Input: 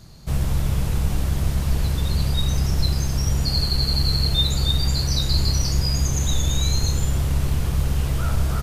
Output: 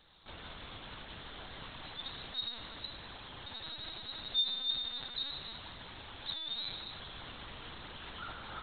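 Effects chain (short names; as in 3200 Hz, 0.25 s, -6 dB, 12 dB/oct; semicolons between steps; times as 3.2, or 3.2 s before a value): limiter -18 dBFS, peak gain reduction 9.5 dB; differentiator; spring tank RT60 1.8 s, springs 54 ms, chirp 40 ms, DRR 3.5 dB; LPC vocoder at 8 kHz pitch kept; bell 2500 Hz -8 dB 0.76 oct; gain +8.5 dB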